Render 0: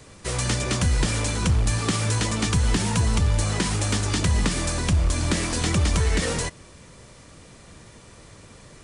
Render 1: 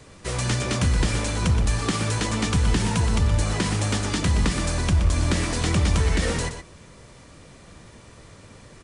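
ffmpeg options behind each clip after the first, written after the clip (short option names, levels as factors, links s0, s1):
-filter_complex "[0:a]highshelf=f=5800:g=-5,asplit=2[s0][s1];[s1]adelay=122.4,volume=0.398,highshelf=f=4000:g=-2.76[s2];[s0][s2]amix=inputs=2:normalize=0"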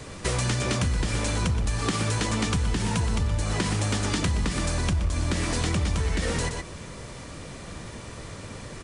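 -af "acompressor=threshold=0.0282:ratio=5,volume=2.37"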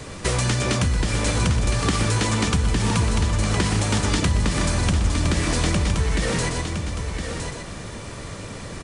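-af "aecho=1:1:1013:0.447,volume=1.58"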